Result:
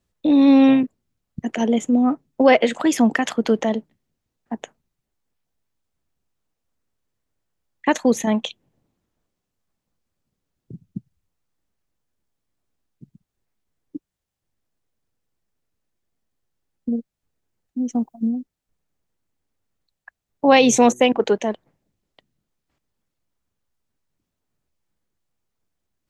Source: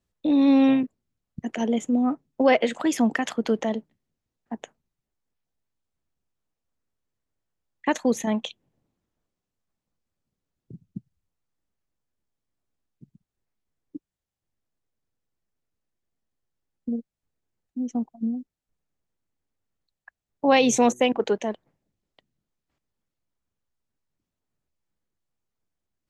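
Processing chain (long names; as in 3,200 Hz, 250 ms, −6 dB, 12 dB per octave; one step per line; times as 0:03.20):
0:17.84–0:18.29: high-shelf EQ 9,300 Hz +11 dB
level +5 dB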